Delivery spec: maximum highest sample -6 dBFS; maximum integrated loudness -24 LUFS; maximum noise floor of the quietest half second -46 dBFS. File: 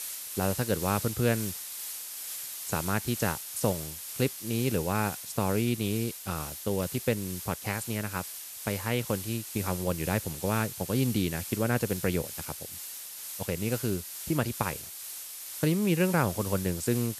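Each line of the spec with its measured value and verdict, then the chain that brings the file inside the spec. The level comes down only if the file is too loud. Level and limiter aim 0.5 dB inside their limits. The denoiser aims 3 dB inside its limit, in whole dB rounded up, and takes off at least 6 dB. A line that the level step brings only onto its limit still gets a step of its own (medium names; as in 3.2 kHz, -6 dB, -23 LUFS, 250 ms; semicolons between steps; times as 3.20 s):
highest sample -10.5 dBFS: pass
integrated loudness -30.5 LUFS: pass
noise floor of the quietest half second -41 dBFS: fail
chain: noise reduction 8 dB, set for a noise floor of -41 dBFS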